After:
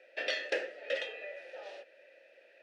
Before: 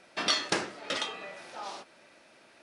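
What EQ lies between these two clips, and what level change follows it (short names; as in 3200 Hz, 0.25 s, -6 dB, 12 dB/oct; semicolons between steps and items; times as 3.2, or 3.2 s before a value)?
vowel filter e; HPF 360 Hz 12 dB/oct; +8.5 dB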